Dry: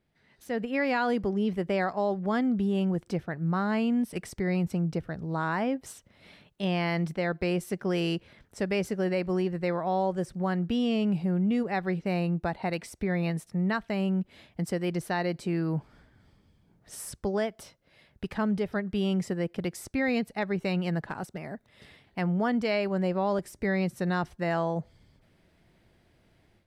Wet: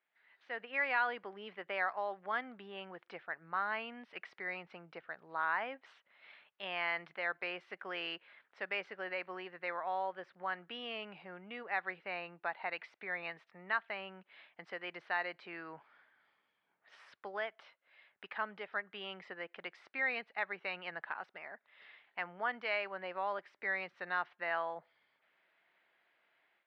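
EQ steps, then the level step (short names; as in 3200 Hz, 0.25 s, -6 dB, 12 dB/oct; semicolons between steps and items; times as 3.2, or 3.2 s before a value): HPF 1300 Hz 12 dB/oct; LPF 3500 Hz 12 dB/oct; air absorption 340 m; +3.5 dB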